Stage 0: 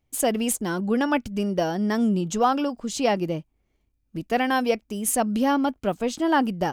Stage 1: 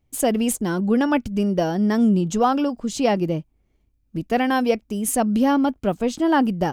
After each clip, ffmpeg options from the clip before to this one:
-af "lowshelf=f=440:g=6"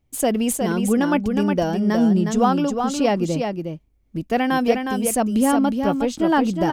-af "aecho=1:1:362:0.531"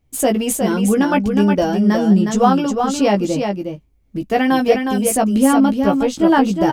-filter_complex "[0:a]asplit=2[s0][s1];[s1]adelay=15,volume=0.631[s2];[s0][s2]amix=inputs=2:normalize=0,volume=1.33"

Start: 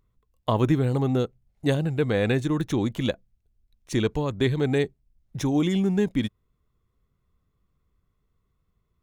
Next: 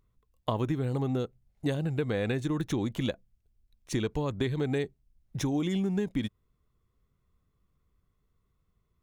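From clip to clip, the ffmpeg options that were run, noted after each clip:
-af "acompressor=threshold=0.0631:ratio=6,volume=0.841"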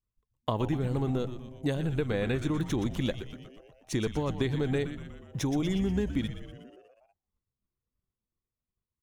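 -filter_complex "[0:a]agate=range=0.0224:threshold=0.00112:ratio=3:detection=peak,asplit=8[s0][s1][s2][s3][s4][s5][s6][s7];[s1]adelay=121,afreqshift=-130,volume=0.316[s8];[s2]adelay=242,afreqshift=-260,volume=0.191[s9];[s3]adelay=363,afreqshift=-390,volume=0.114[s10];[s4]adelay=484,afreqshift=-520,volume=0.0684[s11];[s5]adelay=605,afreqshift=-650,volume=0.0412[s12];[s6]adelay=726,afreqshift=-780,volume=0.0245[s13];[s7]adelay=847,afreqshift=-910,volume=0.0148[s14];[s0][s8][s9][s10][s11][s12][s13][s14]amix=inputs=8:normalize=0"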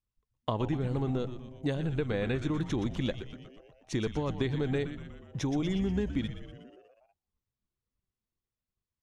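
-af "lowpass=6400,volume=0.841"

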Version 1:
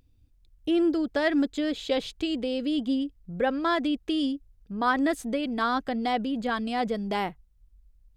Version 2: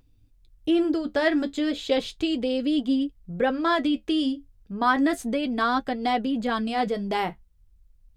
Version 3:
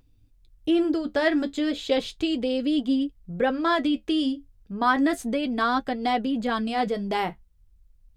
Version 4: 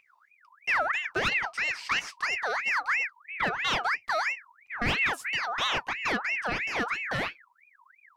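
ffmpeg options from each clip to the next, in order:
-af "flanger=delay=6.7:depth=5.8:regen=-53:speed=0.34:shape=sinusoidal,volume=2.11"
-af anull
-af "bandreject=f=50:t=h:w=6,bandreject=f=100:t=h:w=6,bandreject=f=150:t=h:w=6,volume=7.5,asoftclip=hard,volume=0.133,aeval=exprs='val(0)*sin(2*PI*1700*n/s+1700*0.45/3*sin(2*PI*3*n/s))':c=same,volume=0.841"

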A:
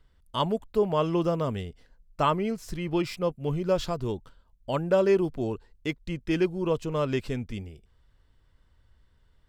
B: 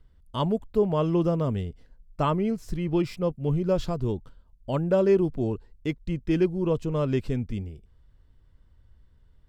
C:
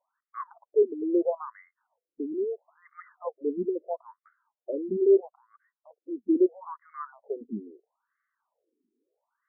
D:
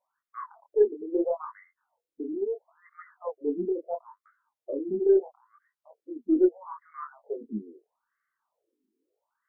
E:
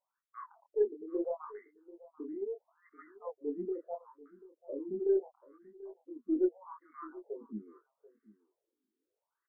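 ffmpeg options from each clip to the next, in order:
-af "lowshelf=f=480:g=10,volume=0.596"
-af "afftfilt=real='re*between(b*sr/1024,300*pow(1600/300,0.5+0.5*sin(2*PI*0.76*pts/sr))/1.41,300*pow(1600/300,0.5+0.5*sin(2*PI*0.76*pts/sr))*1.41)':imag='im*between(b*sr/1024,300*pow(1600/300,0.5+0.5*sin(2*PI*0.76*pts/sr))/1.41,300*pow(1600/300,0.5+0.5*sin(2*PI*0.76*pts/sr))*1.41)':win_size=1024:overlap=0.75,volume=1.26"
-af "flanger=delay=18.5:depth=8:speed=0.67,aeval=exprs='0.211*(cos(1*acos(clip(val(0)/0.211,-1,1)))-cos(1*PI/2))+0.00376*(cos(2*acos(clip(val(0)/0.211,-1,1)))-cos(2*PI/2))+0.00335*(cos(4*acos(clip(val(0)/0.211,-1,1)))-cos(4*PI/2))':c=same,volume=1.33"
-af "aecho=1:1:737:0.106,volume=0.398"

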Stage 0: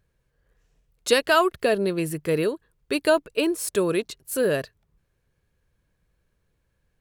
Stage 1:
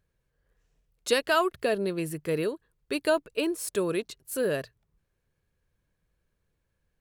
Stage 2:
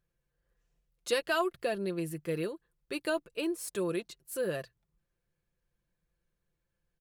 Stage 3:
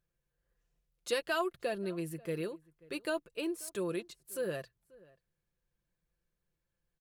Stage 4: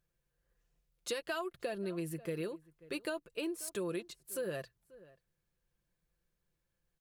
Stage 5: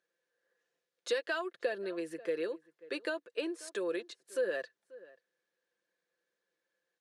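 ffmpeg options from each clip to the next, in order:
-af "bandreject=f=60:t=h:w=6,bandreject=f=120:t=h:w=6,volume=0.562"
-af "aecho=1:1:5.8:0.48,volume=0.473"
-filter_complex "[0:a]asplit=2[s0][s1];[s1]adelay=536.4,volume=0.0708,highshelf=f=4000:g=-12.1[s2];[s0][s2]amix=inputs=2:normalize=0,volume=0.708"
-af "acompressor=threshold=0.0178:ratio=10,volume=1.19"
-af "highpass=f=270:w=0.5412,highpass=f=270:w=1.3066,equalizer=f=500:t=q:w=4:g=7,equalizer=f=1700:t=q:w=4:g=9,equalizer=f=3700:t=q:w=4:g=3,equalizer=f=7800:t=q:w=4:g=-4,lowpass=f=8600:w=0.5412,lowpass=f=8600:w=1.3066"

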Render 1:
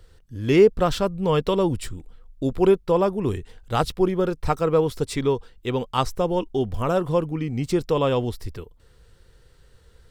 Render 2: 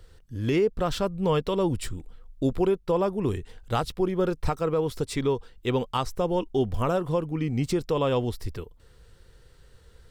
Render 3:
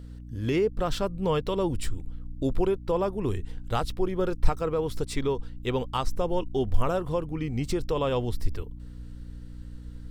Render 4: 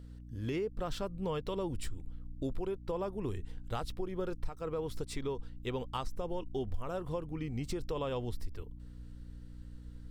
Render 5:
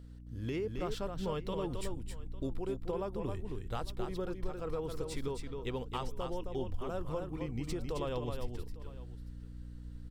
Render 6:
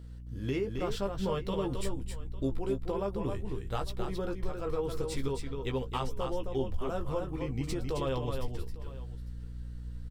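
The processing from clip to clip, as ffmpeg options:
-af "alimiter=limit=0.178:level=0:latency=1:release=295"
-af "asubboost=boost=4:cutoff=70,aeval=exprs='val(0)+0.0112*(sin(2*PI*60*n/s)+sin(2*PI*2*60*n/s)/2+sin(2*PI*3*60*n/s)/3+sin(2*PI*4*60*n/s)/4+sin(2*PI*5*60*n/s)/5)':c=same,volume=0.841"
-af "acompressor=threshold=0.0631:ratio=6,volume=0.447"
-af "aecho=1:1:267|852:0.531|0.119,volume=0.841"
-filter_complex "[0:a]asplit=2[s0][s1];[s1]adelay=15,volume=0.501[s2];[s0][s2]amix=inputs=2:normalize=0,volume=1.41"

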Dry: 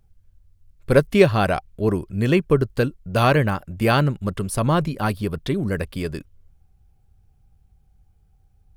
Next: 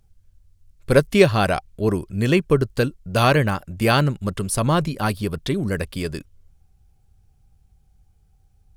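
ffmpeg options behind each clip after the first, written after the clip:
-af "equalizer=f=7000:w=0.51:g=6"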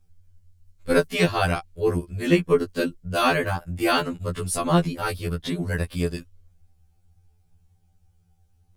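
-af "afftfilt=real='re*2*eq(mod(b,4),0)':imag='im*2*eq(mod(b,4),0)':win_size=2048:overlap=0.75"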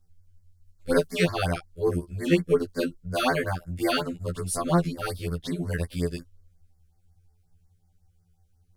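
-af "afftfilt=real='re*(1-between(b*sr/1024,820*pow(3200/820,0.5+0.5*sin(2*PI*5.5*pts/sr))/1.41,820*pow(3200/820,0.5+0.5*sin(2*PI*5.5*pts/sr))*1.41))':imag='im*(1-between(b*sr/1024,820*pow(3200/820,0.5+0.5*sin(2*PI*5.5*pts/sr))/1.41,820*pow(3200/820,0.5+0.5*sin(2*PI*5.5*pts/sr))*1.41))':win_size=1024:overlap=0.75,volume=0.75"

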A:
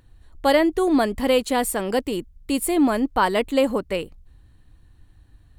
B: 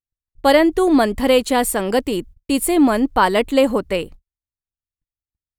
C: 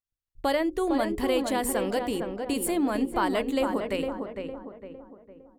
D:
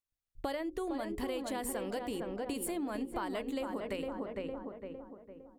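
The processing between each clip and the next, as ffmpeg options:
-af "agate=range=0.00282:threshold=0.01:ratio=16:detection=peak,volume=1.68"
-filter_complex "[0:a]bandreject=f=60:t=h:w=6,bandreject=f=120:t=h:w=6,bandreject=f=180:t=h:w=6,bandreject=f=240:t=h:w=6,bandreject=f=300:t=h:w=6,bandreject=f=360:t=h:w=6,bandreject=f=420:t=h:w=6,bandreject=f=480:t=h:w=6,bandreject=f=540:t=h:w=6,acompressor=threshold=0.0398:ratio=2,asplit=2[s0][s1];[s1]adelay=457,lowpass=f=1600:p=1,volume=0.562,asplit=2[s2][s3];[s3]adelay=457,lowpass=f=1600:p=1,volume=0.45,asplit=2[s4][s5];[s5]adelay=457,lowpass=f=1600:p=1,volume=0.45,asplit=2[s6][s7];[s7]adelay=457,lowpass=f=1600:p=1,volume=0.45,asplit=2[s8][s9];[s9]adelay=457,lowpass=f=1600:p=1,volume=0.45,asplit=2[s10][s11];[s11]adelay=457,lowpass=f=1600:p=1,volume=0.45[s12];[s0][s2][s4][s6][s8][s10][s12]amix=inputs=7:normalize=0,volume=0.75"
-af "acompressor=threshold=0.0251:ratio=6,volume=0.794"

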